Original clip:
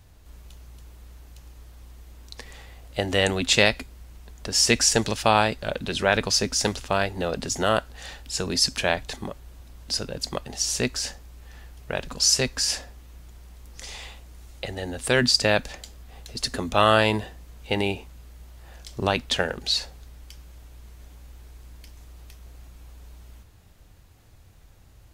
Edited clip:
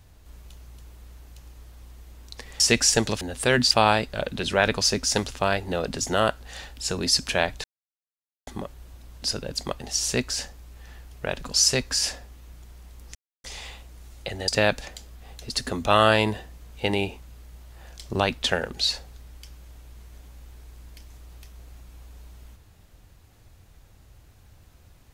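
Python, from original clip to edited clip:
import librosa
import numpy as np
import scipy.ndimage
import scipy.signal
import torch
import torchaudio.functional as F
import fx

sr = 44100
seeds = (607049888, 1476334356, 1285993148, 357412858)

y = fx.edit(x, sr, fx.cut(start_s=2.6, length_s=1.99),
    fx.insert_silence(at_s=9.13, length_s=0.83),
    fx.insert_silence(at_s=13.81, length_s=0.29),
    fx.move(start_s=14.85, length_s=0.5, to_s=5.2), tone=tone)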